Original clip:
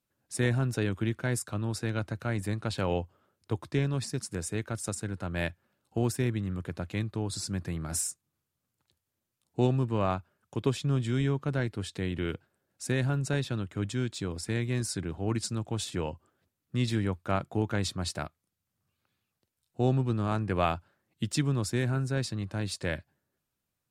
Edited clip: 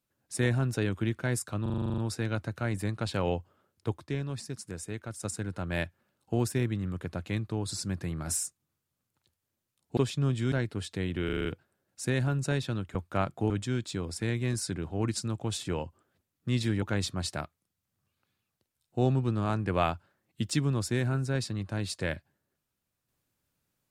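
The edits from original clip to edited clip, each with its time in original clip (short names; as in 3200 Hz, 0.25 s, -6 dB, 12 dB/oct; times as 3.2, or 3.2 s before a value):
1.62 stutter 0.04 s, 10 plays
3.62–4.89 gain -5 dB
9.61–10.64 cut
11.19–11.54 cut
12.27 stutter 0.04 s, 6 plays
17.09–17.64 move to 13.77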